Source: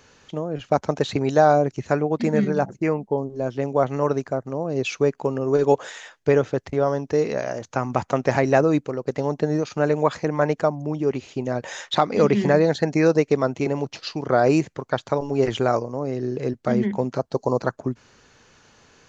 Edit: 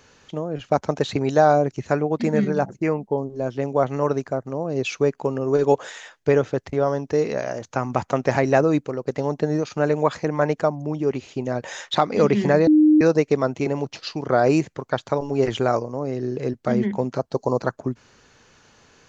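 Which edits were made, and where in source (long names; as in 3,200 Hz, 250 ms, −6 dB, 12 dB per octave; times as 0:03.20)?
0:12.67–0:13.01: beep over 306 Hz −10.5 dBFS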